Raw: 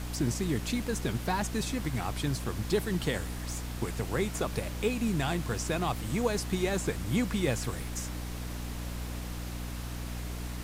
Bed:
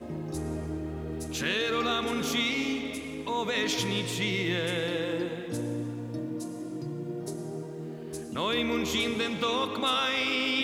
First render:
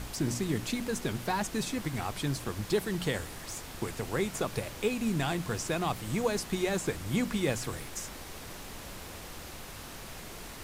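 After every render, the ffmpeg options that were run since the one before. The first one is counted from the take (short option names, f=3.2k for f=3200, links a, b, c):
-af "bandreject=f=60:t=h:w=4,bandreject=f=120:t=h:w=4,bandreject=f=180:t=h:w=4,bandreject=f=240:t=h:w=4,bandreject=f=300:t=h:w=4"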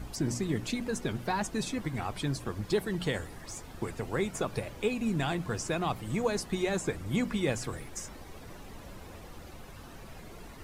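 -af "afftdn=nr=11:nf=-45"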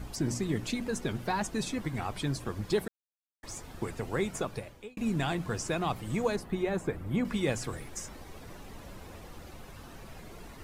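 -filter_complex "[0:a]asettb=1/sr,asplit=3[a][b][c];[a]atrim=end=6.364[d];[b]atrim=start=6.36:end=7.25,asetpts=PTS-STARTPTS,afade=t=in:d=0.004:c=qsin,afade=t=out:st=0.886:d=0.004:c=qsin,equalizer=f=6.4k:w=0.55:g=-13[e];[c]atrim=start=7.246[f];[d][e]acrossfade=d=0.004:c1=hsin:c2=qsin[g];[g][f]acrossfade=d=0.004:c1=qsin:c2=hsin,asplit=4[h][i][j][k];[h]atrim=end=2.88,asetpts=PTS-STARTPTS,afade=t=out:st=2.876:d=0.004:c=hsin[l];[i]atrim=start=2.88:end=3.43,asetpts=PTS-STARTPTS,volume=0[m];[j]atrim=start=3.43:end=4.97,asetpts=PTS-STARTPTS,afade=t=in:d=0.004:c=hsin,afade=t=out:st=0.91:d=0.63[n];[k]atrim=start=4.97,asetpts=PTS-STARTPTS,afade=t=in:d=0.004:c=hsin[o];[l][m][n][o]concat=n=4:v=0:a=1"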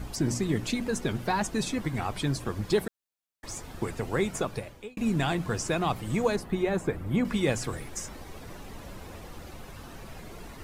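-af "volume=3.5dB"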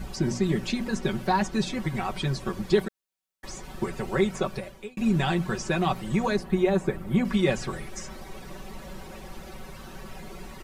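-filter_complex "[0:a]acrossover=split=6200[a][b];[b]acompressor=threshold=-55dB:ratio=4:attack=1:release=60[c];[a][c]amix=inputs=2:normalize=0,aecho=1:1:5.3:0.8"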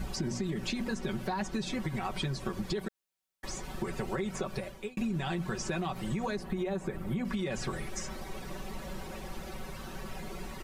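-af "alimiter=limit=-19dB:level=0:latency=1:release=60,acompressor=threshold=-30dB:ratio=6"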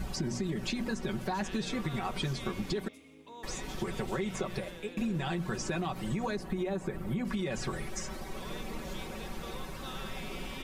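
-filter_complex "[1:a]volume=-18.5dB[a];[0:a][a]amix=inputs=2:normalize=0"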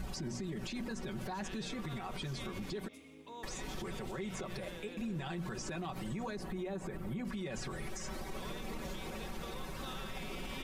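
-af "alimiter=level_in=8.5dB:limit=-24dB:level=0:latency=1:release=67,volume=-8.5dB"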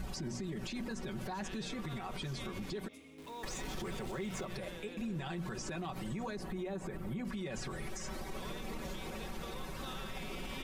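-filter_complex "[0:a]asettb=1/sr,asplit=3[a][b][c];[a]atrim=end=3.184[d];[b]atrim=start=3.18:end=4.45,asetpts=PTS-STARTPTS,afade=t=in:d=0.004:c=qsin,afade=t=out:st=1.266:d=0.004:c=qsin,aeval=exprs='val(0)+0.5*0.00299*sgn(val(0))':c=same[e];[c]atrim=start=4.446[f];[d][e]acrossfade=d=0.004:c1=hsin:c2=qsin[g];[g][f]acrossfade=d=0.004:c1=qsin:c2=hsin"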